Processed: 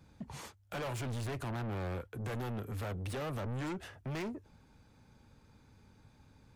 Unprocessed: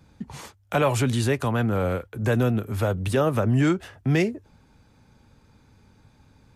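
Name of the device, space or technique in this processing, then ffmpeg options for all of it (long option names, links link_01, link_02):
saturation between pre-emphasis and de-emphasis: -filter_complex "[0:a]asettb=1/sr,asplit=3[link_01][link_02][link_03];[link_01]atrim=end=1.054[link_04];[link_02]atrim=start=1.05:end=2.02,asetpts=PTS-STARTPTS,afade=type=in:duration=0.004:curve=qsin,afade=type=out:start_time=0.966:duration=0.004:curve=qsin,lowshelf=frequency=290:gain=5.5[link_05];[link_03]atrim=start=2.016[link_06];[link_04][link_05]acrossfade=duration=0.004:curve1=hsin:curve2=qsin[link_07];[link_07][link_06]acrossfade=duration=0.004:curve1=qsin:curve2=hsin,highshelf=frequency=7000:gain=10,asoftclip=type=tanh:threshold=-30.5dB,highshelf=frequency=7000:gain=-10,volume=-5.5dB"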